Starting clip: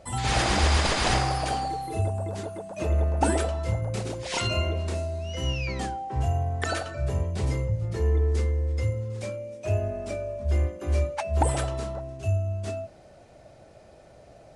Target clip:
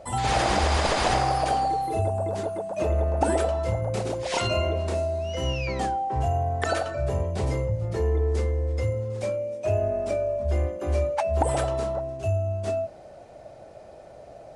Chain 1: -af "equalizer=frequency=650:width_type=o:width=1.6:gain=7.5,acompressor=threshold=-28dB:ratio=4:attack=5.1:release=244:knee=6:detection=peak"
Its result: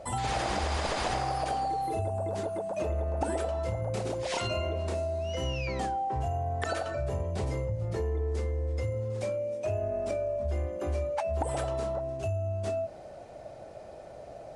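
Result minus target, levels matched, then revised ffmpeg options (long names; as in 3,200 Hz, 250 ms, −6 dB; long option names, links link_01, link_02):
downward compressor: peak gain reduction +8 dB
-af "equalizer=frequency=650:width_type=o:width=1.6:gain=7.5,acompressor=threshold=-17dB:ratio=4:attack=5.1:release=244:knee=6:detection=peak"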